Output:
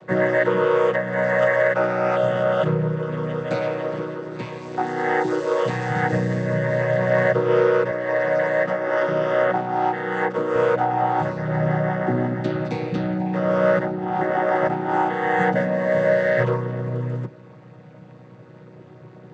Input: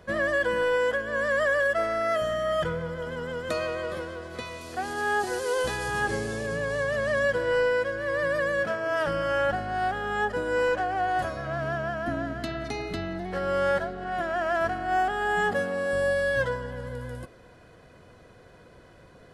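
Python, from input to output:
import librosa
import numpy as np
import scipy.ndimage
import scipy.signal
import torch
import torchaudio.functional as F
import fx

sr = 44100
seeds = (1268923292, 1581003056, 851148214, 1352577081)

y = fx.chord_vocoder(x, sr, chord='major triad', root=47)
y = fx.highpass(y, sr, hz=220.0, slope=12, at=(7.91, 10.56))
y = y * 10.0 ** (7.5 / 20.0)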